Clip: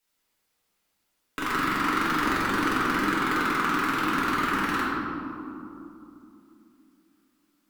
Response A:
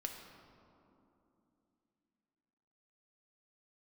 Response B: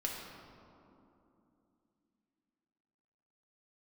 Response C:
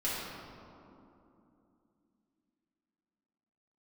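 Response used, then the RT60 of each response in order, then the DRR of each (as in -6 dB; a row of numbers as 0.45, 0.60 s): C; 2.9, 2.9, 2.9 s; 2.5, -2.0, -9.0 dB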